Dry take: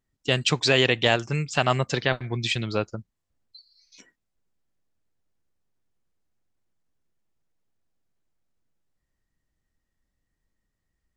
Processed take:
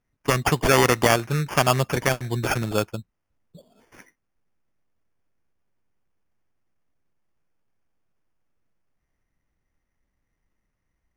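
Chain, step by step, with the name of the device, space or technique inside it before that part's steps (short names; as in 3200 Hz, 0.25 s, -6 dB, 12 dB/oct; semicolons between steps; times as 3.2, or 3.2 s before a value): crushed at another speed (playback speed 0.8×; sample-and-hold 14×; playback speed 1.25×); gain +2.5 dB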